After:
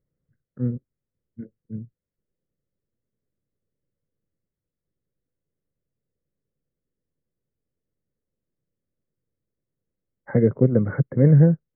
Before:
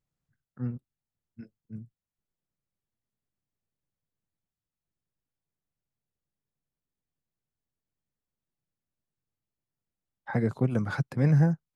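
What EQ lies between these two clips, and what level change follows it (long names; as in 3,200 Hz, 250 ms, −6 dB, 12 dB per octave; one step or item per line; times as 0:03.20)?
linear-phase brick-wall low-pass 2,200 Hz
low shelf with overshoot 640 Hz +7 dB, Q 3
0.0 dB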